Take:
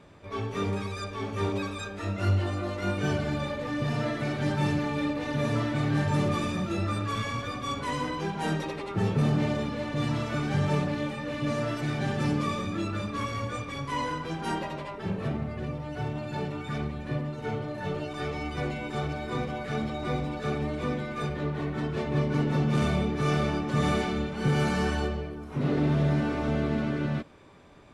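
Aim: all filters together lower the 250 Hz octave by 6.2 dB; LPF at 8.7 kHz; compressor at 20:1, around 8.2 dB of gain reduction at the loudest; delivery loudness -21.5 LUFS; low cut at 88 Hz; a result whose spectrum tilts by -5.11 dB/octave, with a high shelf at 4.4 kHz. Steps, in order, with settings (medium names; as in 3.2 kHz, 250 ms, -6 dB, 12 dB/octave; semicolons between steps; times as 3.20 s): high-pass 88 Hz; low-pass 8.7 kHz; peaking EQ 250 Hz -9 dB; treble shelf 4.4 kHz -6 dB; compression 20:1, threshold -32 dBFS; trim +15.5 dB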